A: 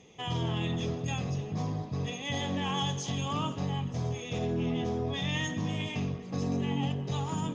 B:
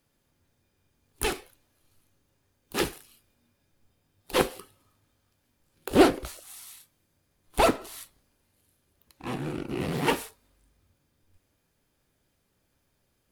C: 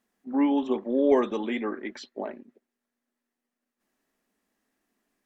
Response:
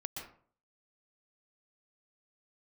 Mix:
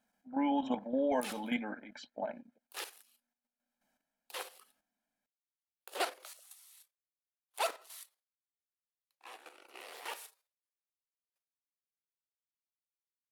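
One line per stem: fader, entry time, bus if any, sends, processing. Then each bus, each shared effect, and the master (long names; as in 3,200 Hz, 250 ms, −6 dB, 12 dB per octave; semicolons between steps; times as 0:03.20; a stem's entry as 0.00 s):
muted
−9.5 dB, 0.00 s, no send, downward expander −52 dBFS; high-pass filter 540 Hz 24 dB per octave; high-shelf EQ 2,200 Hz +5 dB
−0.5 dB, 0.00 s, no send, high-shelf EQ 2,200 Hz −3.5 dB; comb filter 1.3 ms, depth 95%; amplitude tremolo 1.3 Hz, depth 40%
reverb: not used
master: low-shelf EQ 120 Hz −7 dB; output level in coarse steps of 10 dB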